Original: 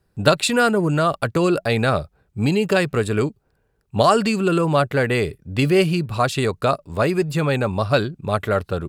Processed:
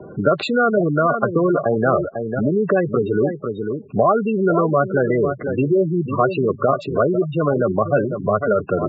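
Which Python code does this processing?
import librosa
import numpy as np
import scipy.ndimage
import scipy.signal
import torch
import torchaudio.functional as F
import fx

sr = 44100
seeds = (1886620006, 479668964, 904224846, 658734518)

p1 = fx.bin_compress(x, sr, power=0.6)
p2 = scipy.signal.sosfilt(scipy.signal.butter(12, 7600.0, 'lowpass', fs=sr, output='sos'), p1)
p3 = p2 + fx.echo_single(p2, sr, ms=498, db=-8.5, dry=0)
p4 = fx.spec_gate(p3, sr, threshold_db=-10, keep='strong')
p5 = scipy.signal.sosfilt(scipy.signal.butter(2, 77.0, 'highpass', fs=sr, output='sos'), p4)
p6 = fx.low_shelf(p5, sr, hz=130.0, db=-9.0)
y = fx.band_squash(p6, sr, depth_pct=40)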